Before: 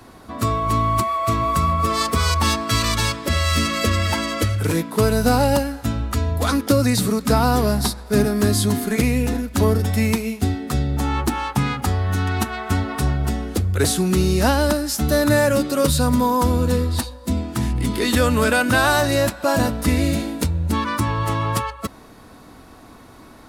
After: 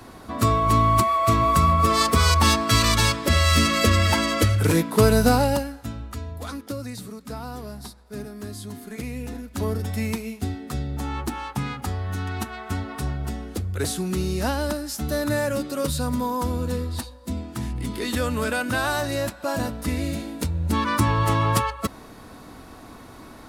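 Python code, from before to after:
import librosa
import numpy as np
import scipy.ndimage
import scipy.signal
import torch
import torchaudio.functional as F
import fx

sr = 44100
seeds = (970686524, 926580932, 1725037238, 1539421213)

y = fx.gain(x, sr, db=fx.line((5.18, 1.0), (5.83, -9.5), (7.09, -17.5), (8.6, -17.5), (9.83, -7.5), (20.23, -7.5), (20.99, 1.0)))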